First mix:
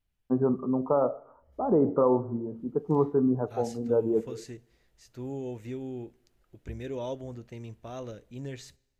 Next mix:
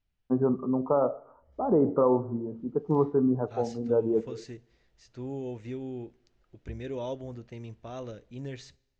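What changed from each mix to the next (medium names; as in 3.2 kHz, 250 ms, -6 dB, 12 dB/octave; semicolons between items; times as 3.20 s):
master: add low-pass 6.3 kHz 24 dB/octave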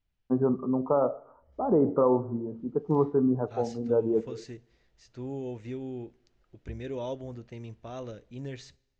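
no change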